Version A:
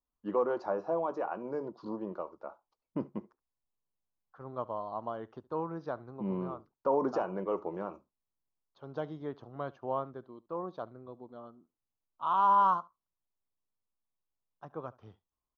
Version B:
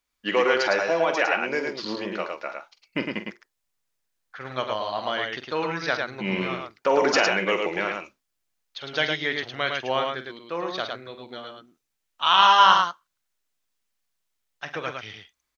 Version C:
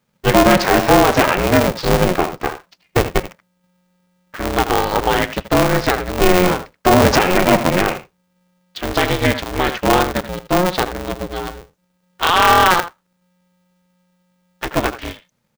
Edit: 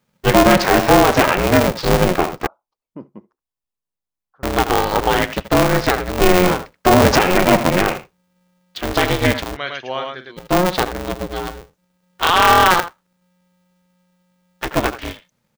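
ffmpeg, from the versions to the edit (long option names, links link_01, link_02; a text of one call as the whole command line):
ffmpeg -i take0.wav -i take1.wav -i take2.wav -filter_complex "[2:a]asplit=3[link_01][link_02][link_03];[link_01]atrim=end=2.472[link_04];[0:a]atrim=start=2.468:end=4.432[link_05];[link_02]atrim=start=4.428:end=9.57[link_06];[1:a]atrim=start=9.53:end=10.4[link_07];[link_03]atrim=start=10.36[link_08];[link_04][link_05]acrossfade=duration=0.004:curve1=hsin:curve2=hsin[link_09];[link_09][link_06]acrossfade=duration=0.004:curve1=hsin:curve2=hsin[link_10];[link_10][link_07]acrossfade=duration=0.04:curve1=tri:curve2=tri[link_11];[link_11][link_08]acrossfade=duration=0.04:curve1=tri:curve2=tri" out.wav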